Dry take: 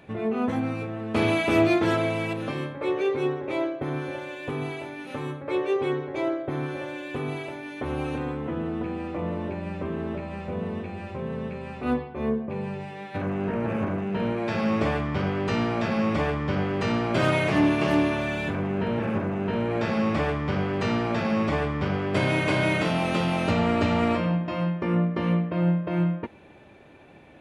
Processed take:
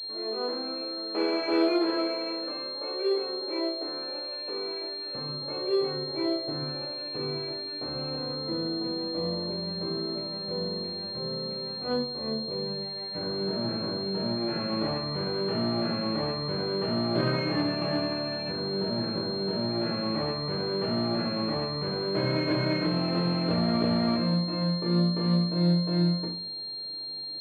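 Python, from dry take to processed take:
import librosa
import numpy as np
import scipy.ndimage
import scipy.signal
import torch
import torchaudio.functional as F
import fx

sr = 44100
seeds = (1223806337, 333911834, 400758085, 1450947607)

y = fx.highpass(x, sr, hz=fx.steps((0.0, 320.0), (5.15, 110.0)), slope=24)
y = fx.room_shoebox(y, sr, seeds[0], volume_m3=42.0, walls='mixed', distance_m=0.66)
y = fx.pwm(y, sr, carrier_hz=4200.0)
y = y * 10.0 ** (-8.0 / 20.0)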